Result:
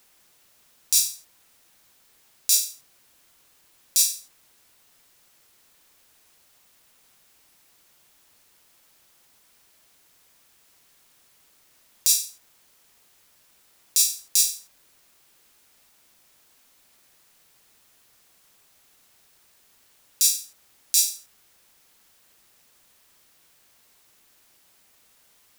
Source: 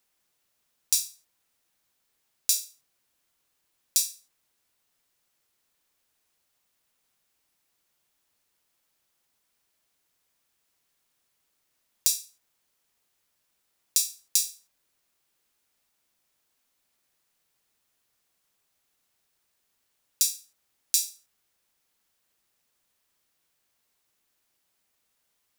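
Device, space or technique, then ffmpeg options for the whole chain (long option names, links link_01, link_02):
loud club master: -af "acompressor=threshold=-26dB:ratio=2.5,asoftclip=type=hard:threshold=-5dB,alimiter=level_in=16dB:limit=-1dB:release=50:level=0:latency=1,volume=-1dB"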